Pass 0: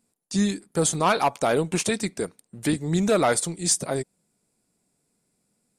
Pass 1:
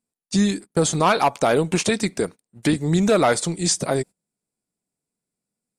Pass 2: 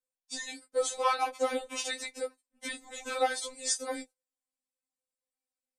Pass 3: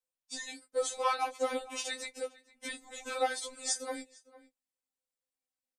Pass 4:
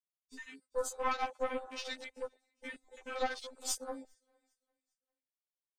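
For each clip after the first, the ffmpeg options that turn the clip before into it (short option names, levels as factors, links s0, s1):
-filter_complex "[0:a]acrossover=split=7700[s0][s1];[s1]acompressor=threshold=0.00631:ratio=4:attack=1:release=60[s2];[s0][s2]amix=inputs=2:normalize=0,agate=range=0.1:threshold=0.0126:ratio=16:detection=peak,asplit=2[s3][s4];[s4]acompressor=threshold=0.0447:ratio=6,volume=1.33[s5];[s3][s5]amix=inputs=2:normalize=0"
-af "lowshelf=f=290:t=q:w=3:g=-7.5,flanger=delay=9.7:depth=1.6:regen=-29:speed=0.96:shape=triangular,afftfilt=real='re*3.46*eq(mod(b,12),0)':imag='im*3.46*eq(mod(b,12),0)':win_size=2048:overlap=0.75,volume=0.668"
-filter_complex "[0:a]asplit=2[s0][s1];[s1]adelay=454.8,volume=0.112,highshelf=f=4000:g=-10.2[s2];[s0][s2]amix=inputs=2:normalize=0,volume=0.75"
-af "aeval=exprs='(tanh(20*val(0)+0.7)-tanh(0.7))/20':c=same,aecho=1:1:401|802|1203:0.0794|0.0326|0.0134,afwtdn=0.00447,volume=1.12"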